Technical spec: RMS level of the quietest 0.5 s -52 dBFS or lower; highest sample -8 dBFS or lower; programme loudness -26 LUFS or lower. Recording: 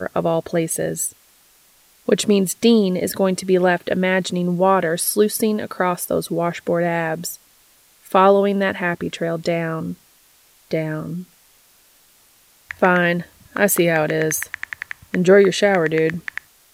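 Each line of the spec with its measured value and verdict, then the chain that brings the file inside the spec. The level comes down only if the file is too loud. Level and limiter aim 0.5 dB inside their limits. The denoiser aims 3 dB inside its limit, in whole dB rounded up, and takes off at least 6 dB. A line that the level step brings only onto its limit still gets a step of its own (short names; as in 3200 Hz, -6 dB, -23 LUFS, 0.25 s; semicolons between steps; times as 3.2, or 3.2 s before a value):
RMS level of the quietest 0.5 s -54 dBFS: OK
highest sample -2.0 dBFS: fail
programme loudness -19.0 LUFS: fail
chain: gain -7.5 dB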